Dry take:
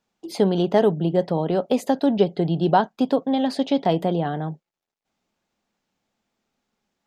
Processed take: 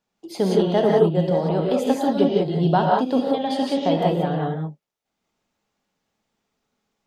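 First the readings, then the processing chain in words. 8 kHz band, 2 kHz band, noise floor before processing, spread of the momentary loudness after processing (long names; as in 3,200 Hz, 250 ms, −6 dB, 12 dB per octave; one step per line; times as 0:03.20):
can't be measured, +1.0 dB, below −85 dBFS, 7 LU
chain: reverb whose tail is shaped and stops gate 210 ms rising, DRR −2.5 dB
level −3 dB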